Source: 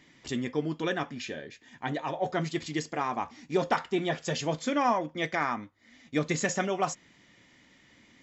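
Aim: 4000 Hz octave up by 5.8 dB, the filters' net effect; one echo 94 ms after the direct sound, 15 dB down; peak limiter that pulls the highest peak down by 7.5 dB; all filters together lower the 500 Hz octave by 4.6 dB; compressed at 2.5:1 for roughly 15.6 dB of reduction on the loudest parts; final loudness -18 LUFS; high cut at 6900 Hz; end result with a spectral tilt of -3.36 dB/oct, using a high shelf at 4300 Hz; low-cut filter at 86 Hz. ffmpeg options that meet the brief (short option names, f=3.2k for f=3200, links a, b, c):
-af "highpass=86,lowpass=6.9k,equalizer=f=500:t=o:g=-6.5,equalizer=f=4k:t=o:g=4.5,highshelf=f=4.3k:g=6.5,acompressor=threshold=-48dB:ratio=2.5,alimiter=level_in=11dB:limit=-24dB:level=0:latency=1,volume=-11dB,aecho=1:1:94:0.178,volume=29dB"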